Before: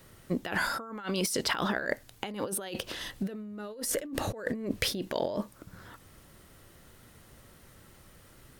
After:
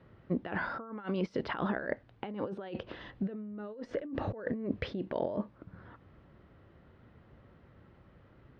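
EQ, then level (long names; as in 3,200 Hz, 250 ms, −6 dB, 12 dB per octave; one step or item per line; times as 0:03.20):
high-pass filter 49 Hz
high-frequency loss of the air 220 metres
head-to-tape spacing loss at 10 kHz 28 dB
0.0 dB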